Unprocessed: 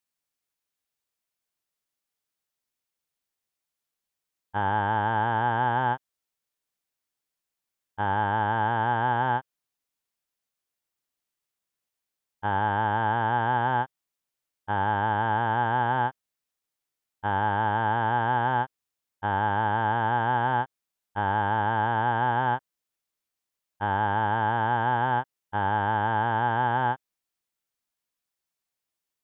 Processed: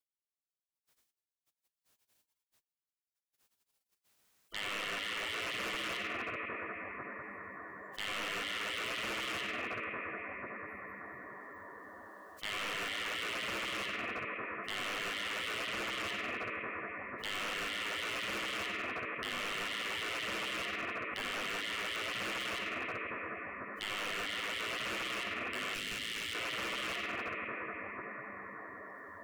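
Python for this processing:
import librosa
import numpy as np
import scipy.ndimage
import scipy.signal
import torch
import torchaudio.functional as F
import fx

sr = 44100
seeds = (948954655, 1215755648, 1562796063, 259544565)

p1 = fx.rattle_buzz(x, sr, strikes_db=-50.0, level_db=-21.0)
p2 = fx.noise_reduce_blind(p1, sr, reduce_db=27)
p3 = p2 + fx.echo_banded(p2, sr, ms=96, feedback_pct=85, hz=1400.0, wet_db=-8.5, dry=0)
p4 = fx.rider(p3, sr, range_db=5, speed_s=2.0)
p5 = fx.rev_freeverb(p4, sr, rt60_s=3.5, hf_ratio=0.25, predelay_ms=20, drr_db=3.0)
p6 = fx.spec_gate(p5, sr, threshold_db=-20, keep='weak')
p7 = fx.air_absorb(p6, sr, metres=86.0, at=(15.66, 16.06))
p8 = np.clip(10.0 ** (35.5 / 20.0) * p7, -1.0, 1.0) / 10.0 ** (35.5 / 20.0)
p9 = fx.peak_eq(p8, sr, hz=810.0, db=-15.0, octaves=2.2, at=(25.74, 26.35))
y = fx.env_flatten(p9, sr, amount_pct=70)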